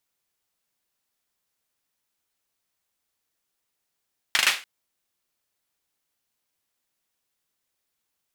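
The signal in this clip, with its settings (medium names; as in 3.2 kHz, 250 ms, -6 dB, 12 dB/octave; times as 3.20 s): hand clap length 0.29 s, bursts 4, apart 39 ms, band 2.3 kHz, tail 0.31 s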